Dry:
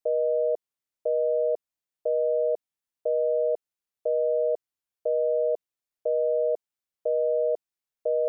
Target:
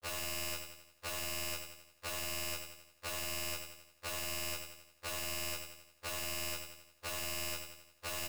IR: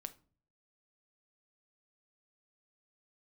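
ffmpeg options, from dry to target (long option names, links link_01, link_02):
-filter_complex "[0:a]agate=range=-31dB:threshold=-23dB:ratio=16:detection=peak,acontrast=32,alimiter=level_in=4dB:limit=-24dB:level=0:latency=1:release=12,volume=-4dB,acontrast=84,asoftclip=type=tanh:threshold=-36dB,acrusher=bits=7:dc=4:mix=0:aa=0.000001,aeval=exprs='(mod(141*val(0)+1,2)-1)/141':channel_layout=same,asplit=2[link_01][link_02];[link_02]adelay=24,volume=-6.5dB[link_03];[link_01][link_03]amix=inputs=2:normalize=0,asplit=2[link_04][link_05];[link_05]aecho=0:1:88|176|264|352|440|528:0.447|0.232|0.121|0.0628|0.0327|0.017[link_06];[link_04][link_06]amix=inputs=2:normalize=0,afftfilt=real='re*2*eq(mod(b,4),0)':imag='im*2*eq(mod(b,4),0)':win_size=2048:overlap=0.75,volume=15.5dB"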